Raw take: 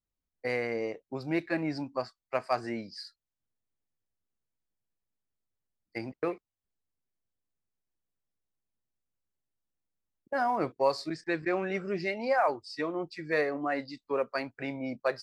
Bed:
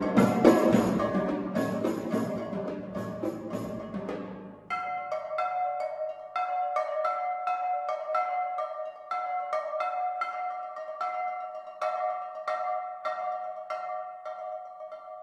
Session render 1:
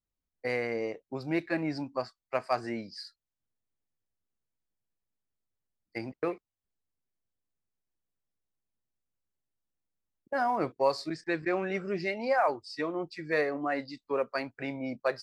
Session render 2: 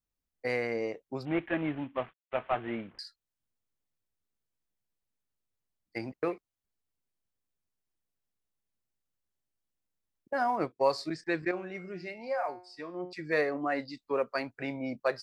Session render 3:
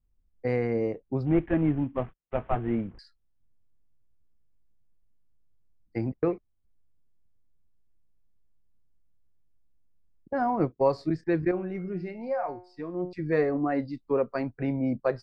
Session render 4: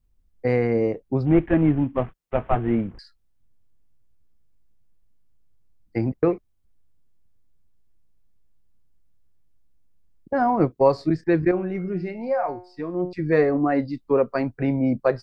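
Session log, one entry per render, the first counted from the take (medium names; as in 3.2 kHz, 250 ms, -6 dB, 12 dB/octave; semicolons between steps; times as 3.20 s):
no audible change
1.25–2.99 s: CVSD coder 16 kbps; 10.35–10.81 s: upward expansion, over -46 dBFS; 11.51–13.13 s: feedback comb 180 Hz, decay 0.45 s, mix 70%
tilt EQ -4.5 dB/octave; band-stop 600 Hz, Q 12
trim +6 dB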